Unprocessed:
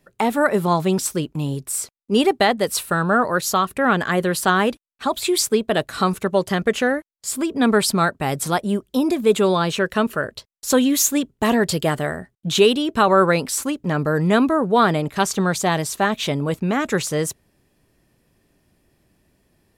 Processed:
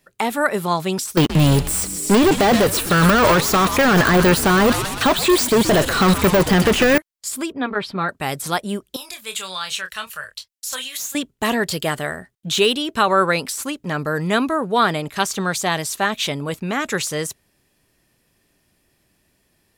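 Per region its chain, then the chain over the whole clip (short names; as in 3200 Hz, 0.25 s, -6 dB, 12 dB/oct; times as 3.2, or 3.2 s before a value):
1.17–6.98 sample leveller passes 5 + frequency-shifting echo 0.125 s, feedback 62%, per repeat -110 Hz, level -13.5 dB
7.52–8.09 air absorption 350 m + notch comb 220 Hz
8.96–11.15 passive tone stack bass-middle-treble 10-0-10 + doubler 27 ms -8 dB
whole clip: de-esser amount 45%; tilt shelf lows -4.5 dB, about 1100 Hz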